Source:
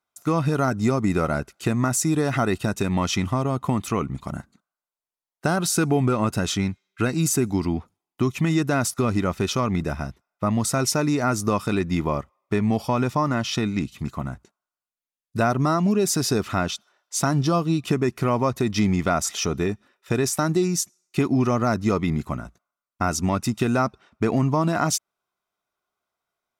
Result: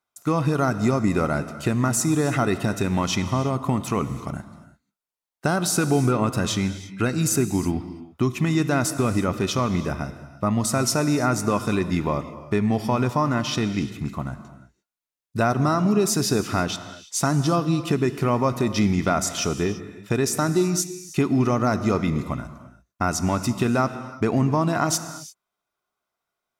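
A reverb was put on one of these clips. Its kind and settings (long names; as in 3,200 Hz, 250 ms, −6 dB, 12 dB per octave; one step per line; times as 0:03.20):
reverb whose tail is shaped and stops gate 370 ms flat, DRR 11 dB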